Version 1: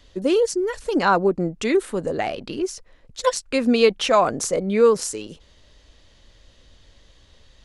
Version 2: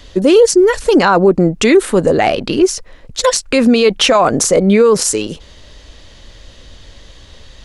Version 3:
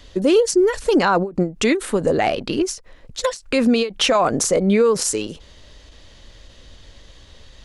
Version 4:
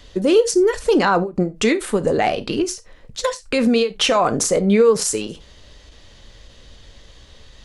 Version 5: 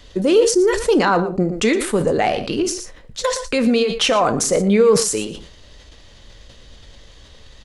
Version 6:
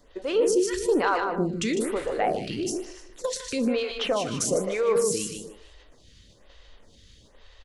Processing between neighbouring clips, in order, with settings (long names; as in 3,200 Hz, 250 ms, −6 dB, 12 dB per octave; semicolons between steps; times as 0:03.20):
boost into a limiter +15 dB; level −1 dB
every ending faded ahead of time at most 200 dB per second; level −6 dB
reverb whose tail is shaped and stops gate 110 ms falling, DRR 11.5 dB
single-tap delay 116 ms −15.5 dB; level that may fall only so fast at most 75 dB per second
on a send: repeating echo 152 ms, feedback 35%, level −6 dB; on the sum: phaser with staggered stages 1.1 Hz; level −6.5 dB